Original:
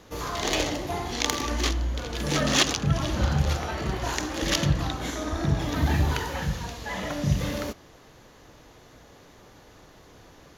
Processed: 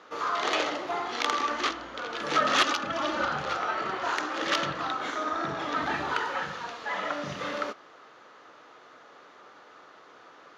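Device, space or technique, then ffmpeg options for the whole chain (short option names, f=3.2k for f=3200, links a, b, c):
intercom: -filter_complex "[0:a]asettb=1/sr,asplit=3[a][b][c];[a]atrim=end=2.654[d];[b]atrim=start=2.65:end=3.26,asetpts=PTS-STARTPTS,afade=t=in:d=0.004:c=qsin,afade=t=out:st=0.606:d=0.004:c=qsin,aecho=1:1:3.4:0.65,atrim=end_sample=26901[e];[c]atrim=start=3.256[f];[d][e]acrossfade=d=0.004:c1=hsin:c2=qsin[g];[g][f]acrossfade=d=0.004:c1=qsin:c2=hsin,highpass=400,lowpass=3.9k,equalizer=f=1.3k:t=o:w=0.41:g=11,asoftclip=type=tanh:threshold=-12dB"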